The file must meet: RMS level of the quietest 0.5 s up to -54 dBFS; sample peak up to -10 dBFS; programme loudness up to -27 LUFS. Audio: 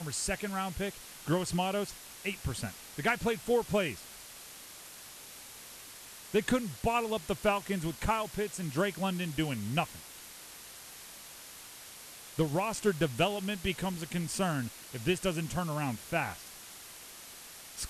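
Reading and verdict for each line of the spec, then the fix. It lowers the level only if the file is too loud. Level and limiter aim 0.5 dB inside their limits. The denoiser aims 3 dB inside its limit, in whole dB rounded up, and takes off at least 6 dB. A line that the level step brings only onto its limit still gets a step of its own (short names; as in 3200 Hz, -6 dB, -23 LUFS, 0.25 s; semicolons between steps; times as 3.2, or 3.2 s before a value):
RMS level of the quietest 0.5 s -49 dBFS: fail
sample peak -17.5 dBFS: OK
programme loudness -33.0 LUFS: OK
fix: denoiser 8 dB, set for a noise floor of -49 dBFS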